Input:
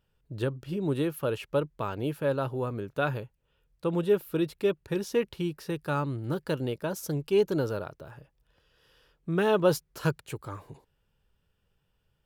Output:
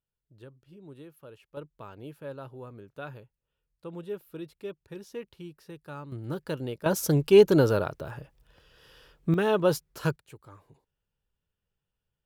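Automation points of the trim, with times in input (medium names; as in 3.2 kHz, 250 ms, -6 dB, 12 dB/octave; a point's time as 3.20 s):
-19 dB
from 1.57 s -12 dB
from 6.12 s -3 dB
from 6.86 s +7.5 dB
from 9.34 s -0.5 dB
from 10.16 s -11.5 dB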